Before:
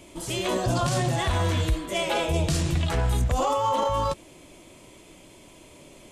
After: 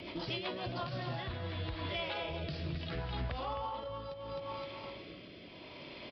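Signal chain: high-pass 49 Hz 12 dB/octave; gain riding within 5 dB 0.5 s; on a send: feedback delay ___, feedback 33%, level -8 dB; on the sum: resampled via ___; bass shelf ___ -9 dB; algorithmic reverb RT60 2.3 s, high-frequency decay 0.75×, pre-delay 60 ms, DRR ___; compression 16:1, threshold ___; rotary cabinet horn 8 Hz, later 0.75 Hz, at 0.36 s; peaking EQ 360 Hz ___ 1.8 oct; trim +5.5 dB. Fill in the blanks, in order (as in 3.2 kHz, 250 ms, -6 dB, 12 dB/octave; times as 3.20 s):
260 ms, 11.025 kHz, 120 Hz, 19.5 dB, -37 dBFS, -4 dB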